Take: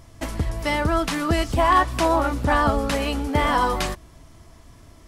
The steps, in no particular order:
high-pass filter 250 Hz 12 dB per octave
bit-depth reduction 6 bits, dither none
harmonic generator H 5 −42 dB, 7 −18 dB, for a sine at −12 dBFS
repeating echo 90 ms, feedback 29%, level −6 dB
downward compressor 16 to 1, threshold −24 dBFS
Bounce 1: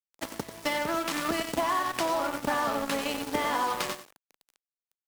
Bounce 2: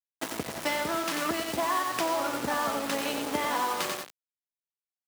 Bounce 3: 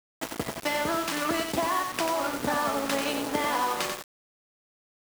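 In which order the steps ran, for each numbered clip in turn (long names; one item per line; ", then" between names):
repeating echo, then bit-depth reduction, then high-pass filter, then harmonic generator, then downward compressor
harmonic generator, then repeating echo, then downward compressor, then bit-depth reduction, then high-pass filter
harmonic generator, then high-pass filter, then downward compressor, then repeating echo, then bit-depth reduction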